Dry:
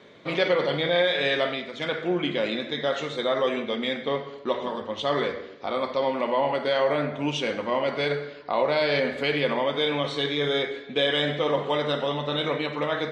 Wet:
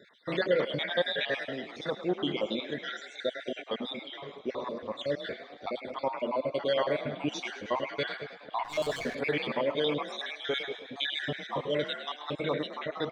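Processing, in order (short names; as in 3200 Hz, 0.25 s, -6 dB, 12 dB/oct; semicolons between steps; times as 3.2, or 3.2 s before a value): random spectral dropouts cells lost 61%; frequency-shifting echo 0.105 s, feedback 65%, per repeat +37 Hz, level -13 dB; 8.64–9.15 running maximum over 5 samples; gain -3 dB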